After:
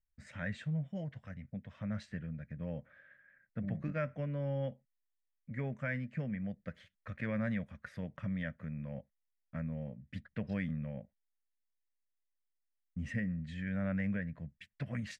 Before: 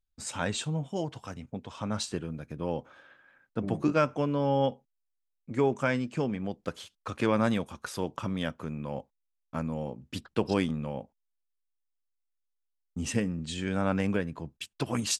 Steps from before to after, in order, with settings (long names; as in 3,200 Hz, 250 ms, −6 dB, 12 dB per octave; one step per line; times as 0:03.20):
drawn EQ curve 200 Hz 0 dB, 370 Hz −20 dB, 590 Hz −4 dB, 870 Hz −20 dB, 1,300 Hz −11 dB, 1,900 Hz +6 dB, 2,700 Hz −12 dB, 8,100 Hz −26 dB
in parallel at −2 dB: brickwall limiter −27 dBFS, peak gain reduction 9 dB
on the sum: level −8 dB